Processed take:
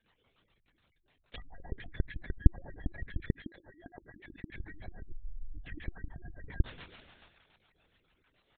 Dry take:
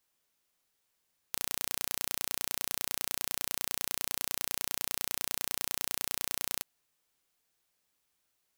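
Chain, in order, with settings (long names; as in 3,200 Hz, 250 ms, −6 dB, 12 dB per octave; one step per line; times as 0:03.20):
downward compressor 6 to 1, threshold −38 dBFS, peak gain reduction 11.5 dB
echo with shifted repeats 206 ms, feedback 55%, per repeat +110 Hz, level −9.5 dB
rectangular room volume 420 cubic metres, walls furnished, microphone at 2.9 metres
rotating-speaker cabinet horn 7 Hz
0:05.09–0:05.59: tilt shelving filter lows +10 dB
gate on every frequency bin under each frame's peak −10 dB strong
0:03.30–0:04.52: high-pass filter 56 Hz 24 dB per octave
linear-prediction vocoder at 8 kHz whisper
level +13 dB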